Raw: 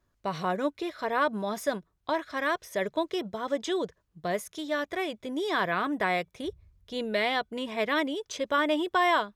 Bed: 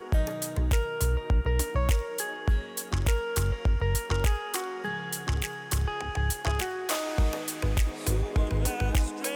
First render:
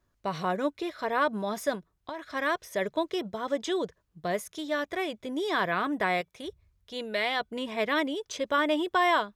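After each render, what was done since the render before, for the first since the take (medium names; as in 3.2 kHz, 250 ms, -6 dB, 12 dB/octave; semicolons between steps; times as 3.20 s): 1.75–2.35 s: compression, threshold -33 dBFS; 6.21–7.40 s: bass shelf 440 Hz -7.5 dB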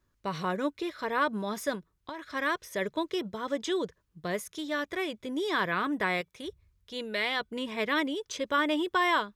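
peaking EQ 690 Hz -7.5 dB 0.46 oct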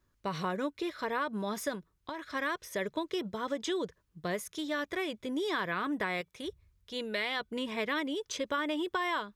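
compression, threshold -29 dBFS, peak gain reduction 7.5 dB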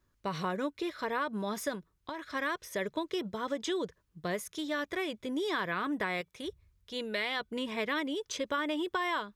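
no audible change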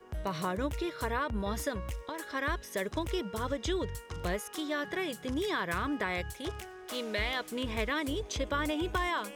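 add bed -14 dB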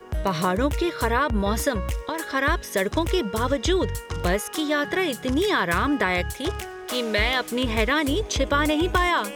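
trim +10.5 dB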